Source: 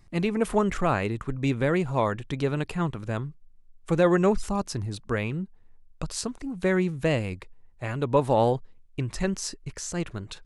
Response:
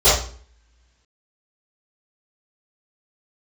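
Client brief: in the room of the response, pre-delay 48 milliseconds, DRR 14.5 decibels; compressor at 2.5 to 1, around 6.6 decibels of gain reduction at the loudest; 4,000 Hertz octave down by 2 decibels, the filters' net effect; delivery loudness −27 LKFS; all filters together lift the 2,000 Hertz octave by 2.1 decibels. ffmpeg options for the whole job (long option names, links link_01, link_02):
-filter_complex "[0:a]equalizer=frequency=2000:width_type=o:gain=3.5,equalizer=frequency=4000:width_type=o:gain=-4,acompressor=threshold=-26dB:ratio=2.5,asplit=2[link_01][link_02];[1:a]atrim=start_sample=2205,adelay=48[link_03];[link_02][link_03]afir=irnorm=-1:irlink=0,volume=-38.5dB[link_04];[link_01][link_04]amix=inputs=2:normalize=0,volume=4dB"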